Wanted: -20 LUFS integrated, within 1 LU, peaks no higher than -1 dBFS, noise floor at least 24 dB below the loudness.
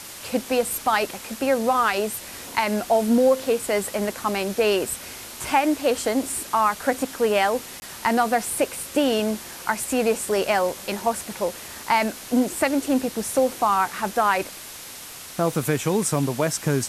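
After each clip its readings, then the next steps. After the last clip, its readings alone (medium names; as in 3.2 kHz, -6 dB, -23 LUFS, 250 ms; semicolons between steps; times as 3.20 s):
dropouts 1; longest dropout 20 ms; noise floor -39 dBFS; noise floor target -47 dBFS; loudness -23.0 LUFS; peak level -6.5 dBFS; loudness target -20.0 LUFS
-> interpolate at 7.80 s, 20 ms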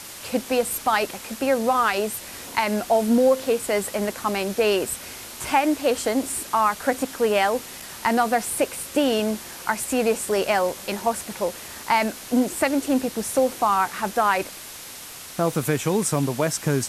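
dropouts 0; noise floor -39 dBFS; noise floor target -47 dBFS
-> noise print and reduce 8 dB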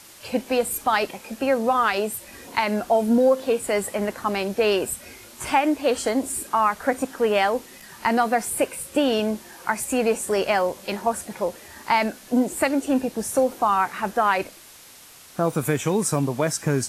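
noise floor -47 dBFS; loudness -23.0 LUFS; peak level -6.5 dBFS; loudness target -20.0 LUFS
-> trim +3 dB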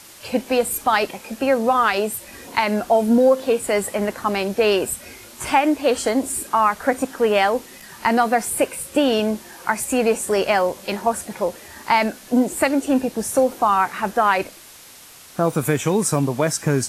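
loudness -20.0 LUFS; peak level -3.5 dBFS; noise floor -44 dBFS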